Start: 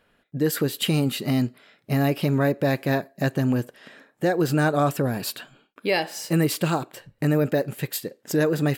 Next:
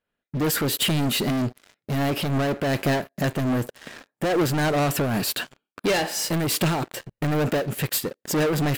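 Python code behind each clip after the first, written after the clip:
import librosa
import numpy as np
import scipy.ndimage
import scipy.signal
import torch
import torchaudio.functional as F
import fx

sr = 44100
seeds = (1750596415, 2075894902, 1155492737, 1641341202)

y = fx.leveller(x, sr, passes=5)
y = fx.am_noise(y, sr, seeds[0], hz=5.7, depth_pct=50)
y = F.gain(torch.from_numpy(y), -6.5).numpy()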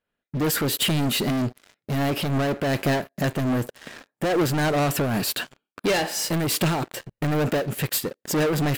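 y = x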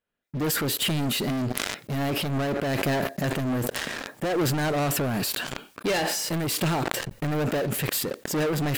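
y = fx.sustainer(x, sr, db_per_s=22.0)
y = F.gain(torch.from_numpy(y), -3.5).numpy()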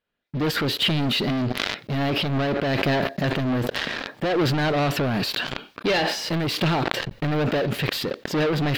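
y = fx.high_shelf_res(x, sr, hz=5900.0, db=-12.5, q=1.5)
y = F.gain(torch.from_numpy(y), 3.0).numpy()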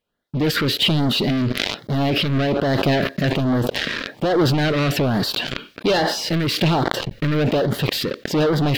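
y = fx.filter_lfo_notch(x, sr, shape='sine', hz=1.2, low_hz=740.0, high_hz=2600.0, q=1.4)
y = F.gain(torch.from_numpy(y), 4.5).numpy()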